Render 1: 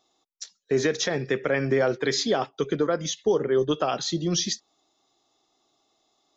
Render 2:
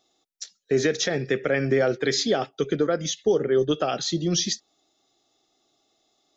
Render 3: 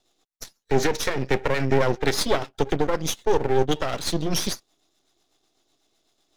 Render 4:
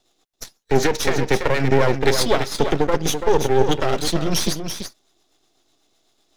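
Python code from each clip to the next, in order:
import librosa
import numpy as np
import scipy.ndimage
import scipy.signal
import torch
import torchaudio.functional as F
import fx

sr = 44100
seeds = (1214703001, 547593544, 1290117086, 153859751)

y1 = fx.peak_eq(x, sr, hz=1000.0, db=-13.0, octaves=0.31)
y1 = y1 * librosa.db_to_amplitude(1.5)
y2 = fx.rotary(y1, sr, hz=8.0)
y2 = np.maximum(y2, 0.0)
y2 = y2 * librosa.db_to_amplitude(6.5)
y3 = y2 + 10.0 ** (-7.5 / 20.0) * np.pad(y2, (int(335 * sr / 1000.0), 0))[:len(y2)]
y3 = y3 * librosa.db_to_amplitude(3.5)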